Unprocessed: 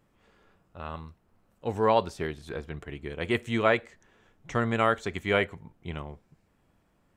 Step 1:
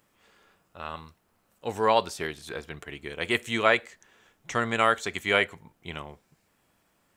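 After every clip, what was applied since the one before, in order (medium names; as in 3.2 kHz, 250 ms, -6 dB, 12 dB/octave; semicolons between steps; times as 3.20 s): tilt EQ +2.5 dB/octave; trim +2 dB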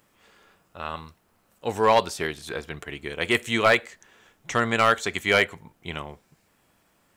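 hard clipper -14 dBFS, distortion -14 dB; trim +4 dB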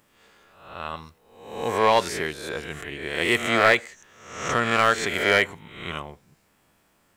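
reverse spectral sustain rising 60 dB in 0.73 s; trim -1.5 dB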